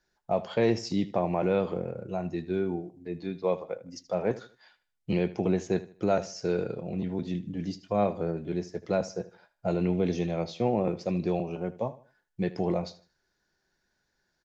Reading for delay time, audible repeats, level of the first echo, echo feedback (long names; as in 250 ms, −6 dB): 78 ms, 2, −17.0 dB, 32%